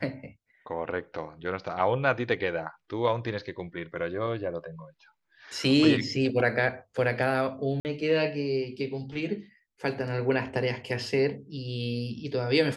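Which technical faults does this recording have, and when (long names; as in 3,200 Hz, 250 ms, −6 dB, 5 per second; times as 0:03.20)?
0:07.80–0:07.85: drop-out 49 ms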